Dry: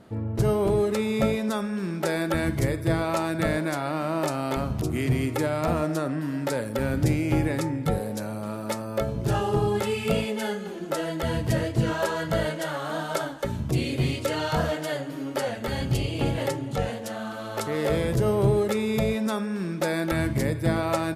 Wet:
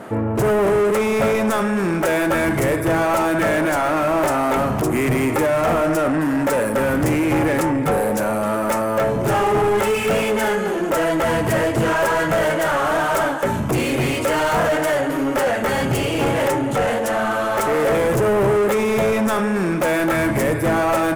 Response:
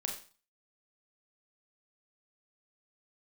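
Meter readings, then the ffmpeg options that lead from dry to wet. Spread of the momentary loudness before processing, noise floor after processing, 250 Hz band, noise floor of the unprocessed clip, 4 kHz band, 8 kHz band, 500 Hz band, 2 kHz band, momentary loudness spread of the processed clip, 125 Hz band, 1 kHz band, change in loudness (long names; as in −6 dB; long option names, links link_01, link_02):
7 LU, −22 dBFS, +6.5 dB, −34 dBFS, +5.0 dB, +8.5 dB, +9.0 dB, +11.0 dB, 3 LU, +1.5 dB, +11.0 dB, +8.0 dB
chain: -filter_complex "[0:a]asplit=2[link_01][link_02];[link_02]highpass=frequency=720:poles=1,volume=29dB,asoftclip=type=tanh:threshold=-10dB[link_03];[link_01][link_03]amix=inputs=2:normalize=0,lowpass=frequency=7100:poles=1,volume=-6dB,equalizer=frequency=4200:width_type=o:width=1.2:gain=-13.5"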